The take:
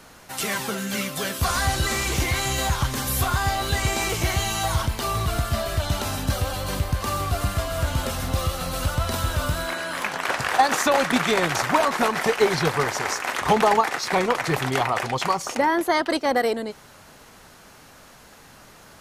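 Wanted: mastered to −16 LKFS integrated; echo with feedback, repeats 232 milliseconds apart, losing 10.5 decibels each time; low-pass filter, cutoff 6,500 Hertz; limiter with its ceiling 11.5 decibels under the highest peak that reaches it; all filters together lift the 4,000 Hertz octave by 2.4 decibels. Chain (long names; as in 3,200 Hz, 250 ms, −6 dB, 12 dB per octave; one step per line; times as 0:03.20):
low-pass filter 6,500 Hz
parametric band 4,000 Hz +3.5 dB
brickwall limiter −17 dBFS
repeating echo 232 ms, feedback 30%, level −10.5 dB
level +10 dB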